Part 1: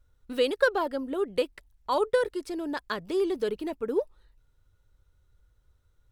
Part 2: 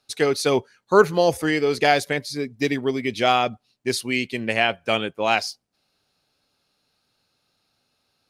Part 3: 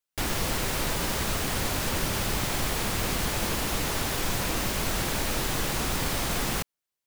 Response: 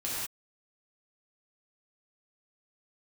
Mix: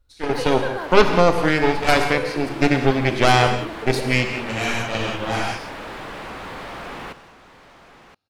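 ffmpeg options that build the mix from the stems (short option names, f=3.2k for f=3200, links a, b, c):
-filter_complex "[0:a]volume=-1.5dB,asplit=3[a][b][c];[b]volume=-10dB[d];[1:a]highshelf=f=4.9k:g=-11.5,dynaudnorm=f=140:g=9:m=8dB,aeval=exprs='0.891*(cos(1*acos(clip(val(0)/0.891,-1,1)))-cos(1*PI/2))+0.251*(cos(6*acos(clip(val(0)/0.891,-1,1)))-cos(6*PI/2))':c=same,volume=-5dB,asplit=2[e][f];[f]volume=-8.5dB[g];[2:a]aemphasis=mode=reproduction:type=75kf,asplit=2[h][i];[i]highpass=f=720:p=1,volume=23dB,asoftclip=type=tanh:threshold=-16dB[j];[h][j]amix=inputs=2:normalize=0,lowpass=f=2.2k:p=1,volume=-6dB,adelay=500,volume=-9dB,asplit=3[k][l][m];[l]volume=-17.5dB[n];[m]volume=-14dB[o];[c]apad=whole_len=365767[p];[e][p]sidechaingate=range=-33dB:threshold=-58dB:ratio=16:detection=peak[q];[a][k]amix=inputs=2:normalize=0,equalizer=f=6.2k:t=o:w=0.77:g=-5.5,acompressor=threshold=-30dB:ratio=6,volume=0dB[r];[3:a]atrim=start_sample=2205[s];[d][g][n]amix=inputs=3:normalize=0[t];[t][s]afir=irnorm=-1:irlink=0[u];[o]aecho=0:1:1021:1[v];[q][r][u][v]amix=inputs=4:normalize=0"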